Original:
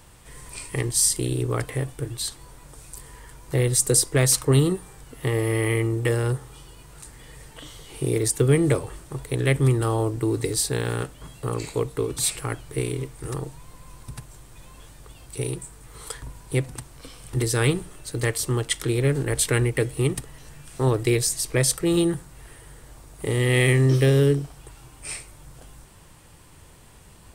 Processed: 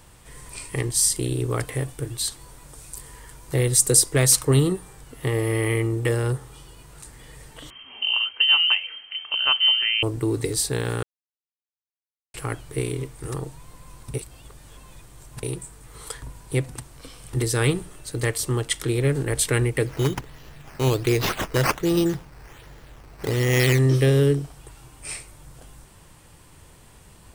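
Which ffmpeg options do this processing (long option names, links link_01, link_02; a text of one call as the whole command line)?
ffmpeg -i in.wav -filter_complex "[0:a]asettb=1/sr,asplit=3[link_01][link_02][link_03];[link_01]atrim=end=1.434[link_04];[link_02]atrim=start=1.43:end=4.54,asetpts=PTS-STARTPTS,afade=type=in:duration=0.004:curve=qsin,afade=type=out:start_time=3.106:duration=0.004:curve=qsin,equalizer=frequency=12000:width_type=o:width=2.4:gain=3.5[link_05];[link_03]atrim=start=4.536[link_06];[link_04][link_05]acrossfade=duration=0.004:curve1=hsin:curve2=qsin[link_07];[link_07][link_06]acrossfade=duration=0.004:curve1=qsin:curve2=hsin,asettb=1/sr,asplit=3[link_08][link_09][link_10];[link_08]atrim=end=7.704[link_11];[link_09]atrim=start=7.7:end=10.03,asetpts=PTS-STARTPTS,afade=type=in:duration=0.004:curve=qsin,afade=type=out:start_time=2.326:duration=0.004:curve=qsin,lowpass=frequency=2700:width_type=q:width=0.5098,lowpass=frequency=2700:width_type=q:width=0.6013,lowpass=frequency=2700:width_type=q:width=0.9,lowpass=frequency=2700:width_type=q:width=2.563,afreqshift=-3200[link_12];[link_10]atrim=start=10.026[link_13];[link_11][link_12]acrossfade=duration=0.004:curve1=hsin:curve2=qsin[link_14];[link_14][link_13]acrossfade=duration=0.004:curve1=qsin:curve2=hsin,asettb=1/sr,asplit=3[link_15][link_16][link_17];[link_15]atrim=end=19.864[link_18];[link_16]atrim=start=19.86:end=23.79,asetpts=PTS-STARTPTS,afade=type=in:duration=0.004:curve=qsin,afade=type=out:start_time=3.926:duration=0.004:curve=qsin,acrusher=samples=9:mix=1:aa=0.000001:lfo=1:lforange=9:lforate=1.3[link_19];[link_17]atrim=start=23.786[link_20];[link_18][link_19]acrossfade=duration=0.004:curve1=hsin:curve2=qsin[link_21];[link_21][link_20]acrossfade=duration=0.004:curve1=qsin:curve2=hsin,asplit=5[link_22][link_23][link_24][link_25][link_26];[link_22]atrim=end=11.03,asetpts=PTS-STARTPTS,afade=type=out:start_time=11.026:duration=0.004:curve=hsin[link_27];[link_23]atrim=start=11.03:end=12.34,asetpts=PTS-STARTPTS,volume=0[link_28];[link_24]atrim=start=12.34:end=14.142,asetpts=PTS-STARTPTS,afade=type=in:duration=0.004:curve=hsin[link_29];[link_25]atrim=start=14.138:end=15.432,asetpts=PTS-STARTPTS,areverse[link_30];[link_26]atrim=start=15.428[link_31];[link_27][link_28][link_29]concat=n=3:v=0:a=1[link_32];[link_32][link_30]acrossfade=duration=0.004:curve1=hsin:curve2=hsin[link_33];[link_33][link_31]acrossfade=duration=0.004:curve1=hsin:curve2=hsin" out.wav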